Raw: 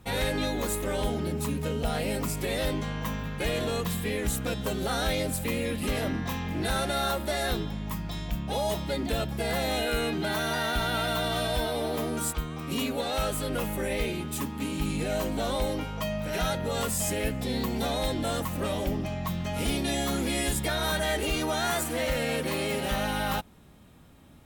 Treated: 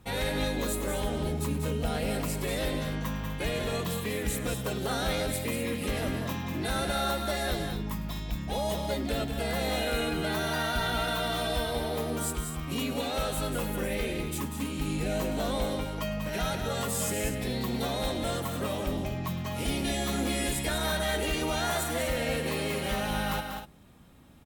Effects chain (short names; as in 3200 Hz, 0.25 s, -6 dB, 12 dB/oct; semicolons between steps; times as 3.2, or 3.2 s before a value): tapped delay 0.102/0.192/0.246 s -16.5/-7/-11.5 dB; gain -2.5 dB